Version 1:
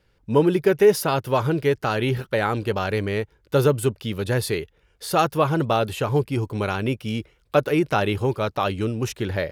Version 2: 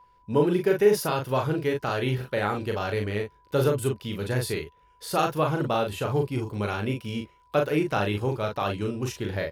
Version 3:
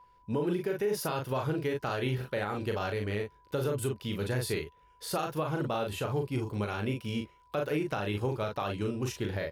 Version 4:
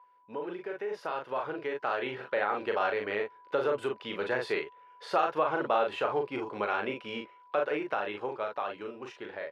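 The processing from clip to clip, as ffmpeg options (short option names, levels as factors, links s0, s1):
-af "aeval=exprs='val(0)+0.00501*sin(2*PI*990*n/s)':c=same,aecho=1:1:39|53:0.631|0.141,volume=0.531"
-af "alimiter=limit=0.1:level=0:latency=1:release=159,volume=0.794"
-af "dynaudnorm=f=310:g=13:m=2.51,highpass=540,lowpass=2200"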